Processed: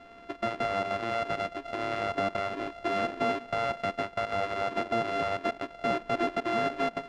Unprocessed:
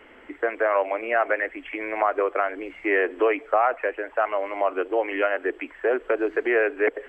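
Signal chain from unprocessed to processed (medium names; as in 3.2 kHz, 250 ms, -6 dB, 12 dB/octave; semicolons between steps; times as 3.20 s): sorted samples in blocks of 64 samples; peak limiter -20 dBFS, peak gain reduction 11 dB; low-pass 2.8 kHz 12 dB/octave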